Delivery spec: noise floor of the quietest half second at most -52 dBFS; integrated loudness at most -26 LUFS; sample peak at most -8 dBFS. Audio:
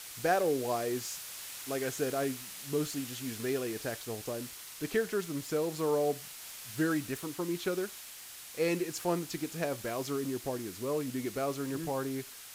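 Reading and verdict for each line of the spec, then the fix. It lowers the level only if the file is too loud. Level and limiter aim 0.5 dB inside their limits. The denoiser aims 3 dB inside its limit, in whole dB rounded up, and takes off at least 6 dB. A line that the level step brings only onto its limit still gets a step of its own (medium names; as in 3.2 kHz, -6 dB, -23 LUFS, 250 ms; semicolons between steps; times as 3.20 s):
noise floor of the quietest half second -48 dBFS: fail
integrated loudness -34.5 LUFS: pass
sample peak -17.0 dBFS: pass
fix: noise reduction 7 dB, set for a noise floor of -48 dBFS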